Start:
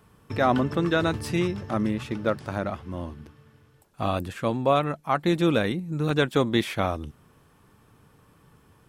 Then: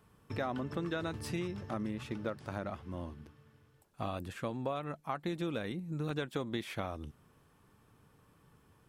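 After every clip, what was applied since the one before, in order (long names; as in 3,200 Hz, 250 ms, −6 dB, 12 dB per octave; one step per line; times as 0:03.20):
downward compressor 6 to 1, threshold −25 dBFS, peak gain reduction 9.5 dB
level −7.5 dB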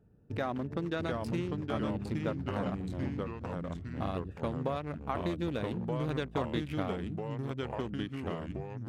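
adaptive Wiener filter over 41 samples
delay with pitch and tempo change per echo 655 ms, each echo −2 semitones, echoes 3
level +2.5 dB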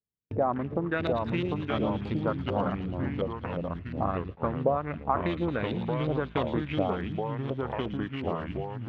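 auto-filter low-pass saw up 2.8 Hz 520–3,800 Hz
delay with a high-pass on its return 112 ms, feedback 77%, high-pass 3,900 Hz, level −4 dB
noise gate −41 dBFS, range −39 dB
level +3.5 dB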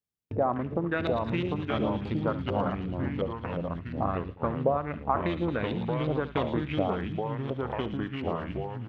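single-tap delay 71 ms −15.5 dB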